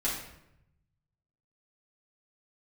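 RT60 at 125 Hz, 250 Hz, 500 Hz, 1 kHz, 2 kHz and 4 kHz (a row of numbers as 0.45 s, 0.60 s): 1.7 s, 1.0 s, 0.90 s, 0.80 s, 0.75 s, 0.60 s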